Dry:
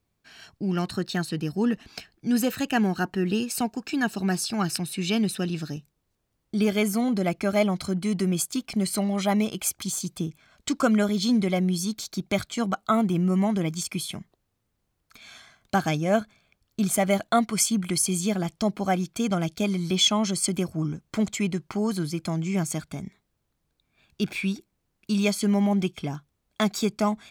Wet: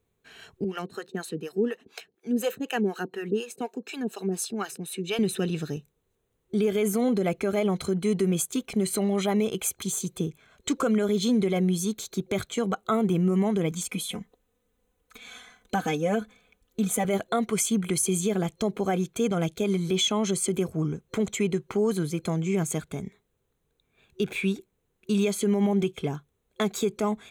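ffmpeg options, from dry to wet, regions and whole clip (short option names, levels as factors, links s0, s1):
-filter_complex "[0:a]asettb=1/sr,asplit=3[s0][s1][s2];[s0]atrim=end=0.644[s3];[s1]atrim=start=0.64:end=5.19,asetpts=PTS-STARTPTS,afade=t=in:d=0.004:c=qsin,afade=t=out:st=4.546:d=0.004:c=qsin,highpass=210,acrossover=split=500[s4][s5];[s4]aeval=exprs='val(0)*(1-1/2+1/2*cos(2*PI*4.1*n/s))':c=same[s6];[s5]aeval=exprs='val(0)*(1-1/2-1/2*cos(2*PI*4.1*n/s))':c=same[s7];[s6][s7]amix=inputs=2:normalize=0[s8];[s2]atrim=start=5.186[s9];[s3][s8]acrossfade=d=0.004:c1=hsin:c2=qsin[s10];[s10][s9]acrossfade=d=0.004:c1=qsin:c2=hsin,asettb=1/sr,asplit=3[s11][s12][s13];[s11]atrim=end=13.714[s14];[s12]atrim=start=13.71:end=17.05,asetpts=PTS-STARTPTS,afade=t=in:d=0.004:c=qsin,afade=t=out:st=3.336:d=0.004:c=qsin,aecho=1:1:4:0.85,atrim=end_sample=147294,acompressor=threshold=0.0282:ratio=1.5:attack=3.2:release=140:knee=1:detection=peak[s15];[s13]atrim=start=17.046[s16];[s14][s15]acrossfade=d=0.004:c1=hsin:c2=qsin[s17];[s17][s16]acrossfade=d=0.004:c1=qsin:c2=hsin,superequalizer=7b=2.82:14b=0.355,alimiter=limit=0.158:level=0:latency=1:release=46"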